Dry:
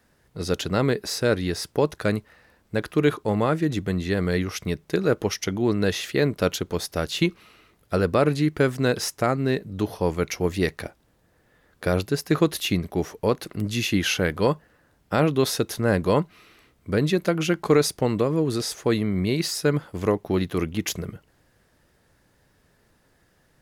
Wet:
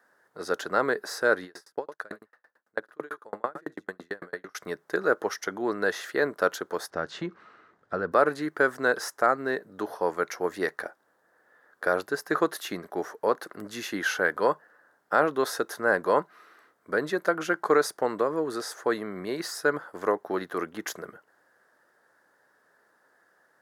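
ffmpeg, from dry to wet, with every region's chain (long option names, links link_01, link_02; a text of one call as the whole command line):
ffmpeg -i in.wav -filter_complex "[0:a]asettb=1/sr,asplit=3[link_01][link_02][link_03];[link_01]atrim=end=1.444[link_04];[link_02]atrim=start=1.44:end=4.55,asetpts=PTS-STARTPTS,afade=type=in:duration=0.004:curve=qsin,afade=type=out:start_time=3.106:duration=0.004:curve=qsin,aecho=1:1:71:0.237,atrim=end_sample=137151,aeval=exprs='val(0)*pow(10,-40*if(lt(mod(9*n/s,1),2*abs(9)/1000),1-mod(9*n/s,1)/(2*abs(9)/1000),(mod(9*n/s,1)-2*abs(9)/1000)/(1-2*abs(9)/1000))/20)':channel_layout=same[link_05];[link_03]atrim=start=4.546[link_06];[link_04][link_05]acrossfade=duration=0.004:curve1=hsin:curve2=qsin[link_07];[link_07][link_06]acrossfade=duration=0.004:curve1=qsin:curve2=hsin,asettb=1/sr,asplit=3[link_08][link_09][link_10];[link_08]atrim=end=6.904[link_11];[link_09]atrim=start=6.9:end=8.12,asetpts=PTS-STARTPTS,afade=type=in:duration=0.004:curve=qsin,afade=type=out:start_time=1.216:duration=0.004:curve=qsin,lowpass=frequency=7800:width=0.5412,lowpass=frequency=7800:width=1.3066,bass=frequency=250:gain=13,treble=frequency=4000:gain=-7,acompressor=threshold=-21dB:ratio=2:attack=3.2:release=140:knee=1:detection=peak[link_12];[link_10]atrim=start=8.116[link_13];[link_11][link_12]acrossfade=duration=0.004:curve1=hsin:curve2=qsin[link_14];[link_14][link_13]acrossfade=duration=0.004:curve1=qsin:curve2=hsin,highpass=470,highshelf=frequency=2000:width_type=q:width=3:gain=-7" out.wav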